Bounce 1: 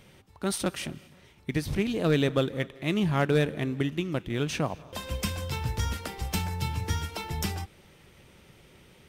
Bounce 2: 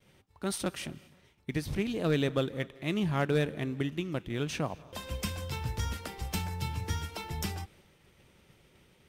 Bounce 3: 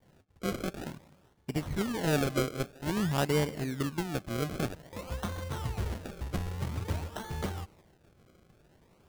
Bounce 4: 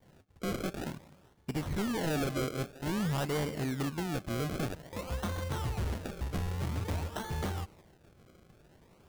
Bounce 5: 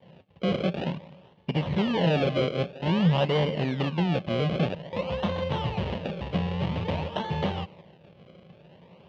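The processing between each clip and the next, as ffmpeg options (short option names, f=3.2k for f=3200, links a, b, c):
-af "agate=range=-33dB:threshold=-51dB:ratio=3:detection=peak,volume=-4dB"
-af "acrusher=samples=33:mix=1:aa=0.000001:lfo=1:lforange=33:lforate=0.51"
-af "asoftclip=type=hard:threshold=-31dB,volume=2dB"
-af "highpass=110,equalizer=f=170:t=q:w=4:g=9,equalizer=f=300:t=q:w=4:g=-5,equalizer=f=550:t=q:w=4:g=8,equalizer=f=930:t=q:w=4:g=4,equalizer=f=1.4k:t=q:w=4:g=-8,equalizer=f=2.9k:t=q:w=4:g=8,lowpass=f=4k:w=0.5412,lowpass=f=4k:w=1.3066,volume=6dB"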